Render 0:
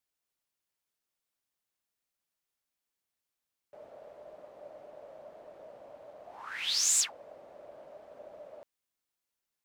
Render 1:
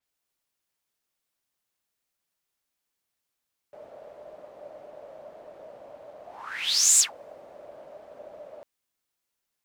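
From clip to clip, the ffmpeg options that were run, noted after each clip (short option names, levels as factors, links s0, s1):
-af "adynamicequalizer=threshold=0.01:dfrequency=5600:dqfactor=0.7:tfrequency=5600:tqfactor=0.7:attack=5:release=100:ratio=0.375:range=2:mode=boostabove:tftype=highshelf,volume=1.68"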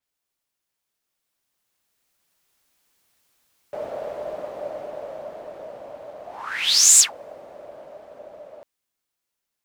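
-af "dynaudnorm=f=260:g=17:m=6.31"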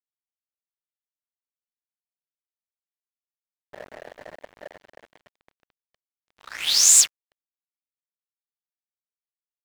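-af "aeval=exprs='sgn(val(0))*max(abs(val(0))-0.0355,0)':c=same"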